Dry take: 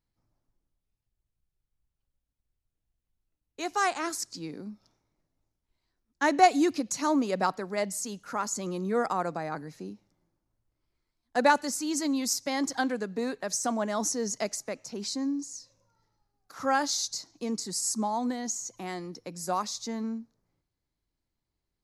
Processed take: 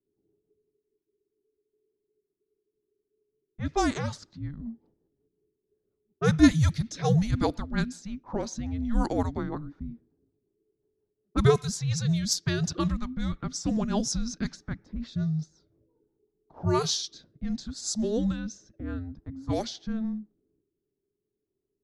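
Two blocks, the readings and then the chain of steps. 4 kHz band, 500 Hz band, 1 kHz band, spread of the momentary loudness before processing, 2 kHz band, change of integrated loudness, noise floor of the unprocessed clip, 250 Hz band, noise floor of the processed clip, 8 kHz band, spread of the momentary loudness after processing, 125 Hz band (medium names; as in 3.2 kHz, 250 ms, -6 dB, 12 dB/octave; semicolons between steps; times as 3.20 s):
+1.0 dB, -0.5 dB, -7.5 dB, 12 LU, -5.0 dB, +1.0 dB, -85 dBFS, +3.0 dB, -83 dBFS, -4.0 dB, 15 LU, +17.5 dB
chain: frequency shift -440 Hz; level-controlled noise filter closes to 550 Hz, open at -23 dBFS; rotary cabinet horn 5.5 Hz, later 0.6 Hz, at 16.23 s; trim +4 dB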